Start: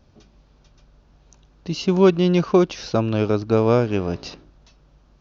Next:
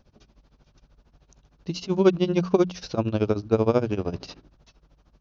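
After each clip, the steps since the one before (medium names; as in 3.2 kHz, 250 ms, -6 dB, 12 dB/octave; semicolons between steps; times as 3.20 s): tremolo 13 Hz, depth 91%; dynamic bell 1.9 kHz, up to -3 dB, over -40 dBFS, Q 0.83; hum notches 60/120/180 Hz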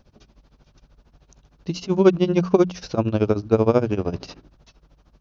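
dynamic bell 3.9 kHz, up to -4 dB, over -48 dBFS, Q 1.4; trim +3.5 dB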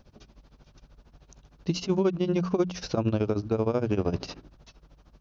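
compression, threshold -18 dBFS, peak gain reduction 9.5 dB; peak limiter -15 dBFS, peak gain reduction 6 dB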